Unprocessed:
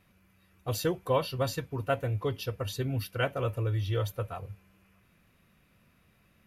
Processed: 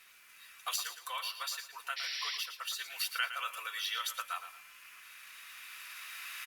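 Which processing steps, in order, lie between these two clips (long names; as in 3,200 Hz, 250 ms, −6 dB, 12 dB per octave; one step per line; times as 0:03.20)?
running median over 3 samples
camcorder AGC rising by 7.4 dB per second
high-pass filter 1,200 Hz 24 dB per octave
high-shelf EQ 2,900 Hz +8 dB
downward compressor 2.5 to 1, threshold −43 dBFS, peak gain reduction 11.5 dB
bit reduction 12 bits
0:00.76–0:02.77: flanger 1.9 Hz, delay 3.6 ms, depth 2.8 ms, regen −56%
0:01.96–0:02.38: sound drawn into the spectrogram noise 1,700–5,800 Hz −47 dBFS
repeating echo 113 ms, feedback 30%, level −10.5 dB
level +8 dB
Opus 64 kbit/s 48,000 Hz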